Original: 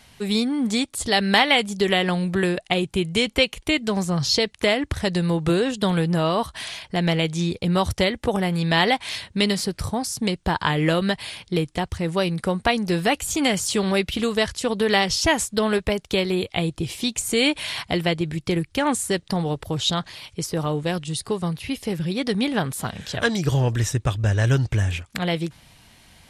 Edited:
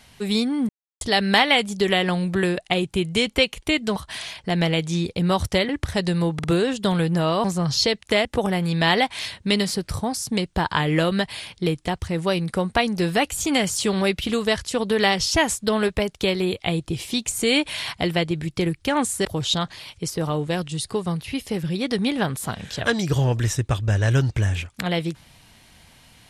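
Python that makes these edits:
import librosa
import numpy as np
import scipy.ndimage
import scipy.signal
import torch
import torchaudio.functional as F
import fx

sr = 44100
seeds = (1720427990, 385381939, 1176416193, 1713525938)

y = fx.edit(x, sr, fx.silence(start_s=0.69, length_s=0.32),
    fx.swap(start_s=3.96, length_s=0.81, other_s=6.42, other_length_s=1.73),
    fx.stutter(start_s=5.42, slice_s=0.05, count=3),
    fx.cut(start_s=19.15, length_s=0.46), tone=tone)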